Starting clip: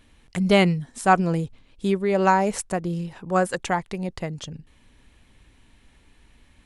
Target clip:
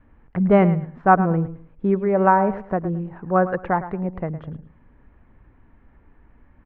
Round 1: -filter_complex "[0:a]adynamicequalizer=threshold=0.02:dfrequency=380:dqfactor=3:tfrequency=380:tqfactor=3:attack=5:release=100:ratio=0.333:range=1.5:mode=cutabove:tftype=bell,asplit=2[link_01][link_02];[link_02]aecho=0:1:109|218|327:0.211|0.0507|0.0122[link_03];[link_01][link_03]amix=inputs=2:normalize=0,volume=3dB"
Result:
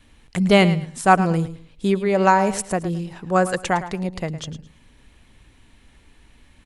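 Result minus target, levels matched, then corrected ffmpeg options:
2,000 Hz band +3.5 dB
-filter_complex "[0:a]adynamicequalizer=threshold=0.02:dfrequency=380:dqfactor=3:tfrequency=380:tqfactor=3:attack=5:release=100:ratio=0.333:range=1.5:mode=cutabove:tftype=bell,lowpass=frequency=1600:width=0.5412,lowpass=frequency=1600:width=1.3066,asplit=2[link_01][link_02];[link_02]aecho=0:1:109|218|327:0.211|0.0507|0.0122[link_03];[link_01][link_03]amix=inputs=2:normalize=0,volume=3dB"

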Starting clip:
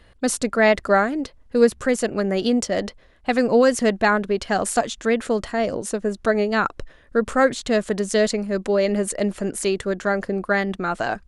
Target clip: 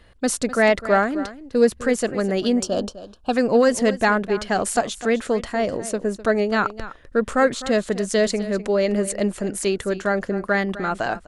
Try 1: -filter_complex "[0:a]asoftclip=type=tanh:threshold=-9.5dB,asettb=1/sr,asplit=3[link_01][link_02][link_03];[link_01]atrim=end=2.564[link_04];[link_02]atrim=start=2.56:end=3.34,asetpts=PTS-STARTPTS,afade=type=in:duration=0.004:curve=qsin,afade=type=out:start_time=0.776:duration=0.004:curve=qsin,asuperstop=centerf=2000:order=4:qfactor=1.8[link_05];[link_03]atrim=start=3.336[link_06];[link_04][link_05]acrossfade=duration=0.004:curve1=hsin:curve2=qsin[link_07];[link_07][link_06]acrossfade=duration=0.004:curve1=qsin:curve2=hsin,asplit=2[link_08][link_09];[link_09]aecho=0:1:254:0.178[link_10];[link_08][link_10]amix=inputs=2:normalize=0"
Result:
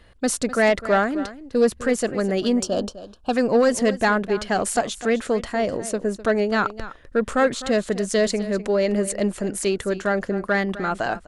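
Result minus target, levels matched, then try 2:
soft clipping: distortion +10 dB
-filter_complex "[0:a]asoftclip=type=tanh:threshold=-3dB,asettb=1/sr,asplit=3[link_01][link_02][link_03];[link_01]atrim=end=2.564[link_04];[link_02]atrim=start=2.56:end=3.34,asetpts=PTS-STARTPTS,afade=type=in:duration=0.004:curve=qsin,afade=type=out:start_time=0.776:duration=0.004:curve=qsin,asuperstop=centerf=2000:order=4:qfactor=1.8[link_05];[link_03]atrim=start=3.336[link_06];[link_04][link_05]acrossfade=duration=0.004:curve1=hsin:curve2=qsin[link_07];[link_07][link_06]acrossfade=duration=0.004:curve1=qsin:curve2=hsin,asplit=2[link_08][link_09];[link_09]aecho=0:1:254:0.178[link_10];[link_08][link_10]amix=inputs=2:normalize=0"

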